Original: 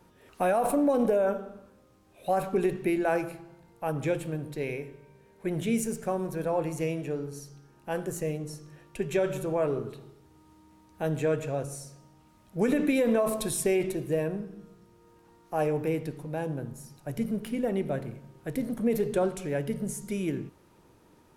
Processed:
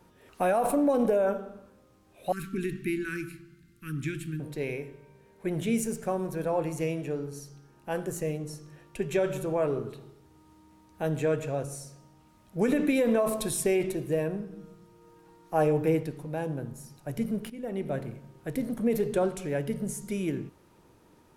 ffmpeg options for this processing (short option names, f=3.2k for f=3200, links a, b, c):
-filter_complex "[0:a]asettb=1/sr,asplit=3[a][b][c];[a]atrim=end=2.324[d];[b]atrim=start=2.32:end=4.4,asetpts=PTS-STARTPTS,afade=t=in:d=0.004:c=qsin,afade=t=out:st=2.076:d=0.004:c=qsin,asuperstop=centerf=680:order=8:qfactor=0.65[e];[c]atrim=start=4.396[f];[d][e]acrossfade=d=0.004:c1=hsin:c2=qsin[g];[g][f]acrossfade=d=0.004:c1=qsin:c2=hsin,asettb=1/sr,asplit=3[h][i][j];[h]atrim=end=14.514[k];[i]atrim=start=14.51:end=16.03,asetpts=PTS-STARTPTS,afade=t=in:d=0.004:c=qsin,afade=t=out:st=1.516:d=0.004:c=qsin,aecho=1:1:6.3:0.59,atrim=end_sample=67032[l];[j]atrim=start=16.026[m];[k][l]acrossfade=d=0.004:c1=hsin:c2=qsin[n];[n][m]acrossfade=d=0.004:c1=qsin:c2=hsin,asplit=2[o][p];[o]atrim=end=17.5,asetpts=PTS-STARTPTS,afade=t=out:st=17.496:d=0.004:c=hsin:silence=0.188365[q];[p]atrim=start=17.5,asetpts=PTS-STARTPTS,afade=t=in:d=0.48:silence=0.188365[r];[q][r]concat=n=2:v=0:a=1"